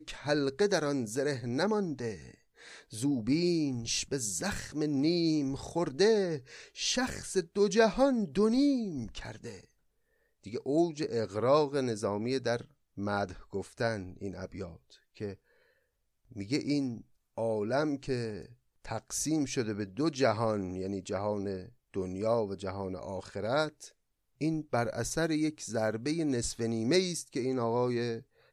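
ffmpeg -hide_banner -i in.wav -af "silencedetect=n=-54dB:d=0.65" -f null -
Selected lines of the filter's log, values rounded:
silence_start: 9.65
silence_end: 10.44 | silence_duration: 0.79
silence_start: 15.35
silence_end: 16.31 | silence_duration: 0.96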